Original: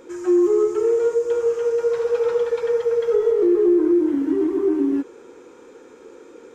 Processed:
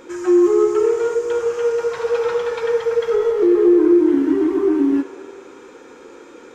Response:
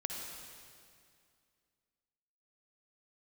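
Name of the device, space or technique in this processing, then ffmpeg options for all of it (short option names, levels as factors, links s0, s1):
filtered reverb send: -filter_complex "[0:a]asplit=2[s0][s1];[s1]highpass=f=440:w=0.5412,highpass=f=440:w=1.3066,lowpass=6400[s2];[1:a]atrim=start_sample=2205[s3];[s2][s3]afir=irnorm=-1:irlink=0,volume=0.562[s4];[s0][s4]amix=inputs=2:normalize=0,volume=1.58"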